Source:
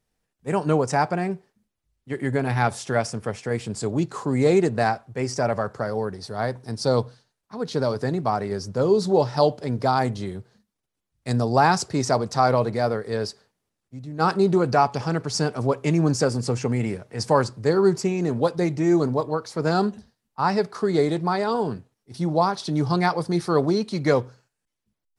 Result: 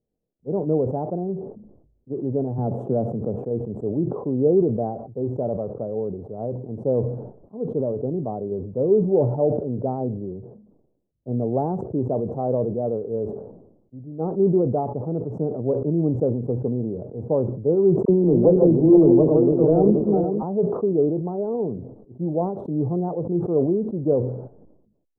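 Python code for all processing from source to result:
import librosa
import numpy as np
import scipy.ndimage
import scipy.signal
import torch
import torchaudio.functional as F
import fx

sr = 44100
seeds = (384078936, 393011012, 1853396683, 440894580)

y = fx.chain(x, sr, fx.highpass(hz=110.0, slope=24),
    fx.dynamic_eq(hz=160.0, q=0.85, threshold_db=-38.0, ratio=4.0, max_db=6),
    fx.pre_swell(db_per_s=46.0), at=(2.58, 3.36))
y = fx.chain(y, sr, fx.reverse_delay_fb(ms=239, feedback_pct=52, wet_db=-4.0),
    fx.leveller(passes=2),
    fx.dispersion(late='lows', ms=41.0, hz=660.0), at=(18.05, 20.43))
y = scipy.signal.sosfilt(scipy.signal.cheby2(4, 60, 1900.0, 'lowpass', fs=sr, output='sos'), y)
y = fx.low_shelf(y, sr, hz=160.0, db=-10.5)
y = fx.sustainer(y, sr, db_per_s=62.0)
y = y * librosa.db_to_amplitude(2.5)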